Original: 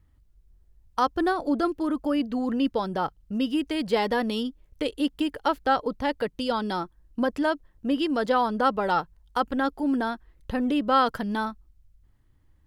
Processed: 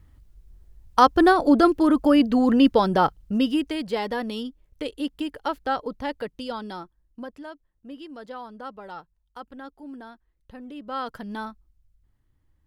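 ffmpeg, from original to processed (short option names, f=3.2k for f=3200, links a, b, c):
-af "volume=18dB,afade=t=out:st=3:d=0.86:silence=0.281838,afade=t=out:st=6.06:d=1.37:silence=0.251189,afade=t=in:st=10.74:d=0.65:silence=0.316228"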